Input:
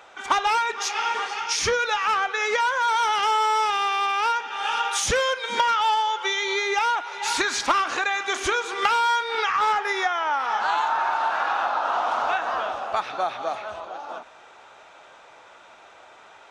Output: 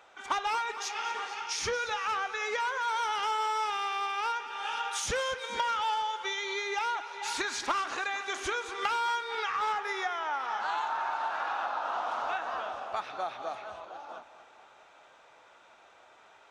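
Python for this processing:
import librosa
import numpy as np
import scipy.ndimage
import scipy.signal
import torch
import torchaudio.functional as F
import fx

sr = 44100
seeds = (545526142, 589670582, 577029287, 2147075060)

y = fx.echo_feedback(x, sr, ms=229, feedback_pct=56, wet_db=-15)
y = y * 10.0 ** (-9.0 / 20.0)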